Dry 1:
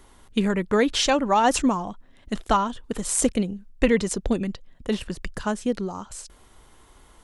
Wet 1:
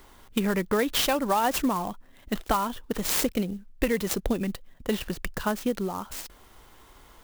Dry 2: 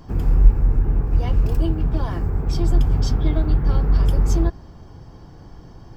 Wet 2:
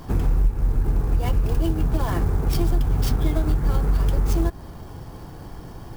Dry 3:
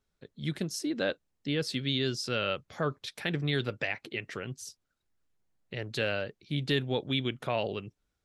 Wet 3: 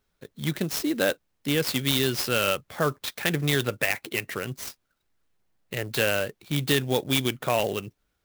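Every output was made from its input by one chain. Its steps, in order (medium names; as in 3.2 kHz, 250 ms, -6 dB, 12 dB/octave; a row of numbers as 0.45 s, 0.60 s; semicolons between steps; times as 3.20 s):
bass shelf 420 Hz -4 dB; compression 4:1, threshold -24 dBFS; sampling jitter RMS 0.031 ms; peak normalisation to -9 dBFS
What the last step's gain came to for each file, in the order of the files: +2.5 dB, +7.0 dB, +8.0 dB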